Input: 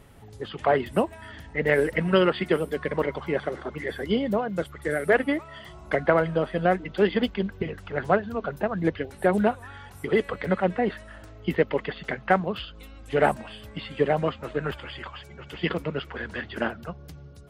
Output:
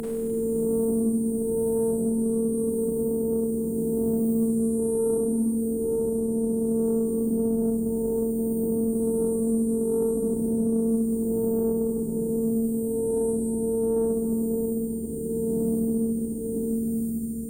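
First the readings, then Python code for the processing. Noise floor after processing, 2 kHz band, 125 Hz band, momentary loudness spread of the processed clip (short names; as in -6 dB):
-29 dBFS, under -35 dB, -3.5 dB, 3 LU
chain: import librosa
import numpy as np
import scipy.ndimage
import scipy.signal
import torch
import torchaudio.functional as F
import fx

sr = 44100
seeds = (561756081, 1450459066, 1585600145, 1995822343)

y = fx.spec_swells(x, sr, rise_s=2.55)
y = scipy.signal.sosfilt(scipy.signal.ellip(3, 1.0, 70, [350.0, 8300.0], 'bandstop', fs=sr, output='sos'), y)
y = fx.peak_eq(y, sr, hz=8600.0, db=8.5, octaves=0.31)
y = fx.over_compress(y, sr, threshold_db=-24.0, ratio=-0.5)
y = fx.fixed_phaser(y, sr, hz=1700.0, stages=4)
y = fx.robotise(y, sr, hz=226.0)
y = fx.rev_schroeder(y, sr, rt60_s=2.4, comb_ms=33, drr_db=-6.5)
y = fx.cheby_harmonics(y, sr, harmonics=(5,), levels_db=(-24,), full_scale_db=-8.5)
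y = fx.echo_stepped(y, sr, ms=281, hz=970.0, octaves=1.4, feedback_pct=70, wet_db=-10.5)
y = fx.band_squash(y, sr, depth_pct=70)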